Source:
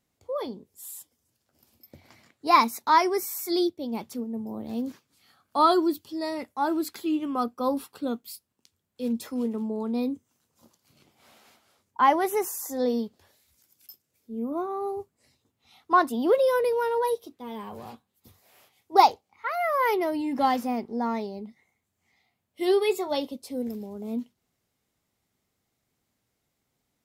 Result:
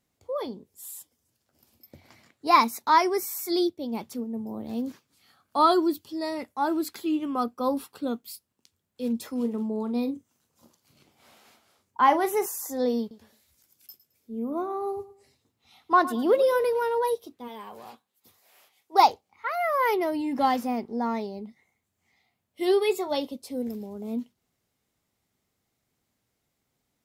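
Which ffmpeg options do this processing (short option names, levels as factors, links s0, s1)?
-filter_complex "[0:a]asettb=1/sr,asplit=3[s0][s1][s2];[s0]atrim=end=9.364[s3];[s1]atrim=start=9.36:end=12.46,asetpts=PTS-STARTPTS,afade=t=in:d=0.004:c=qsin,afade=t=out:st=3.096:d=0.004:c=qsin,asplit=2[s4][s5];[s5]adelay=42,volume=0.237[s6];[s4][s6]amix=inputs=2:normalize=0,atrim=end_sample=136710[s7];[s2]atrim=start=12.456[s8];[s3][s7]acrossfade=d=0.004:c1=hsin:c2=qsin[s9];[s9][s8]acrossfade=d=0.004:c1=qsin:c2=hsin,asettb=1/sr,asplit=3[s10][s11][s12];[s10]atrim=end=13.004[s13];[s11]atrim=start=13:end=16.82,asetpts=PTS-STARTPTS,afade=t=in:d=0.004:c=qsin,afade=t=out:st=3.816:d=0.004:c=qsin,aecho=1:1:108|216|324:0.158|0.0444|0.0124,atrim=end_sample=168462[s14];[s12]atrim=start=16.816[s15];[s13][s14]acrossfade=d=0.004:c1=hsin:c2=qsin[s16];[s16][s15]acrossfade=d=0.004:c1=qsin:c2=hsin,asplit=3[s17][s18][s19];[s17]afade=t=out:st=17.47:d=0.02[s20];[s18]highpass=f=550:p=1,afade=t=in:st=17.47:d=0.02,afade=t=out:st=19:d=0.02[s21];[s19]afade=t=in:st=19:d=0.02[s22];[s20][s21][s22]amix=inputs=3:normalize=0"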